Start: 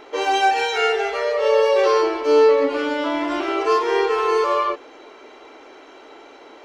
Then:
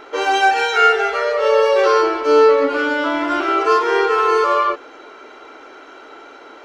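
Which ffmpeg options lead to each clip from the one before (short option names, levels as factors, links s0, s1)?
-af "equalizer=f=1400:t=o:w=0.28:g=10.5,volume=1.26"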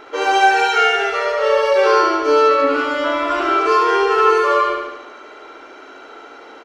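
-af "aecho=1:1:73|146|219|292|365|438|511|584:0.631|0.366|0.212|0.123|0.0714|0.0414|0.024|0.0139,volume=0.891"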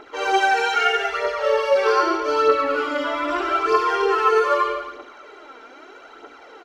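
-af "aphaser=in_gain=1:out_gain=1:delay=4.6:decay=0.53:speed=0.8:type=triangular,volume=0.501"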